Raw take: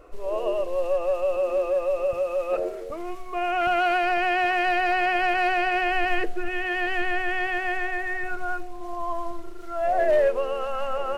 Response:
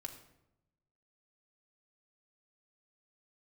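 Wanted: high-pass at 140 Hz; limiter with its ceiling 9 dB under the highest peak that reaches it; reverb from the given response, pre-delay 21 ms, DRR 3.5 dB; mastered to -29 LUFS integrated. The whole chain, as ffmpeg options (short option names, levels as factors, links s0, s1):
-filter_complex "[0:a]highpass=140,alimiter=limit=0.0708:level=0:latency=1,asplit=2[s0][s1];[1:a]atrim=start_sample=2205,adelay=21[s2];[s1][s2]afir=irnorm=-1:irlink=0,volume=1[s3];[s0][s3]amix=inputs=2:normalize=0,volume=0.891"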